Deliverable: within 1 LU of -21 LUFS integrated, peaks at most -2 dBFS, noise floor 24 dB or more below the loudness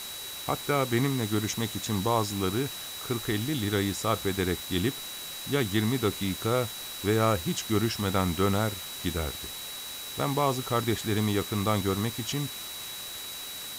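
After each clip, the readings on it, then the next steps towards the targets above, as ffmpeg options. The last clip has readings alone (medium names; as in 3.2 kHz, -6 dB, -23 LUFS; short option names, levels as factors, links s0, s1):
steady tone 3.9 kHz; tone level -40 dBFS; noise floor -39 dBFS; noise floor target -53 dBFS; loudness -29.0 LUFS; peak level -12.5 dBFS; loudness target -21.0 LUFS
-> -af "bandreject=f=3900:w=30"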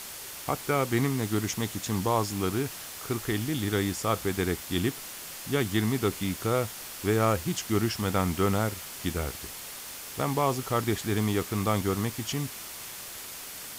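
steady tone not found; noise floor -41 dBFS; noise floor target -54 dBFS
-> -af "afftdn=nr=13:nf=-41"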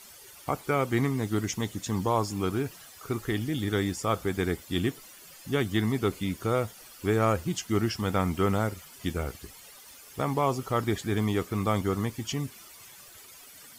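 noise floor -50 dBFS; noise floor target -54 dBFS
-> -af "afftdn=nr=6:nf=-50"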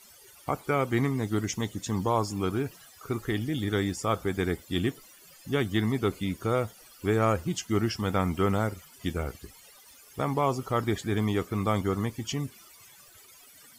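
noise floor -54 dBFS; loudness -29.5 LUFS; peak level -13.5 dBFS; loudness target -21.0 LUFS
-> -af "volume=2.66"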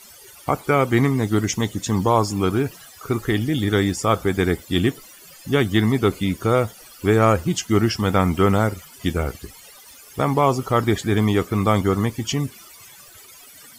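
loudness -21.0 LUFS; peak level -5.0 dBFS; noise floor -45 dBFS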